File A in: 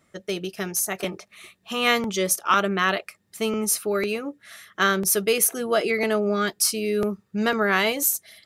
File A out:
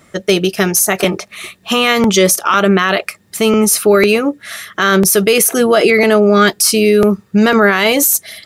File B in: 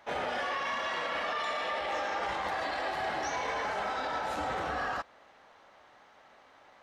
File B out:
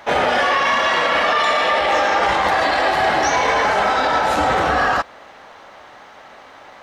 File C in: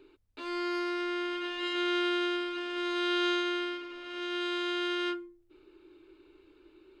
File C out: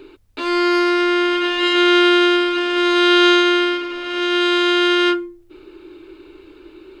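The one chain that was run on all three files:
loudness maximiser +17.5 dB; trim -1 dB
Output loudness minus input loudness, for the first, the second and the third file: +11.5 LU, +16.5 LU, +16.5 LU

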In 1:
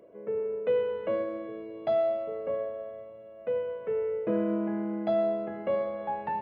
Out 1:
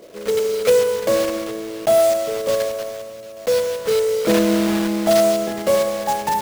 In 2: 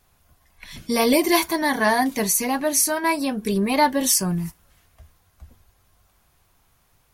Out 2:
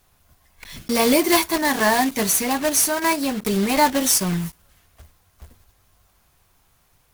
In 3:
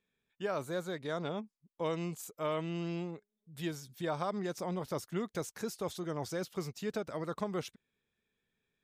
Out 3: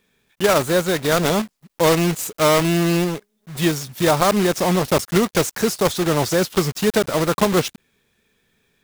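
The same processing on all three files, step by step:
block-companded coder 3-bit; normalise loudness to -19 LUFS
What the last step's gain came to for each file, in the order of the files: +11.5 dB, +1.0 dB, +18.5 dB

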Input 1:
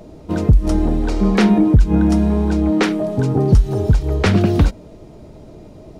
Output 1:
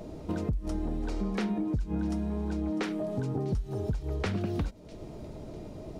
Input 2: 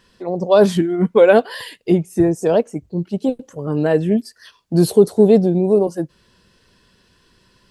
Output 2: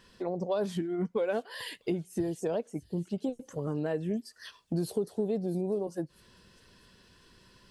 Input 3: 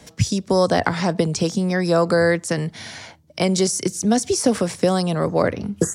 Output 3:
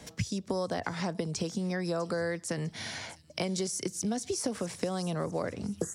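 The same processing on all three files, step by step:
compression 4:1, threshold -28 dBFS; on a send: feedback echo behind a high-pass 650 ms, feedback 42%, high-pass 4.2 kHz, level -14 dB; on the sum: trim -3 dB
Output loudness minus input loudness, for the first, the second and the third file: -16.5 LU, -17.0 LU, -13.5 LU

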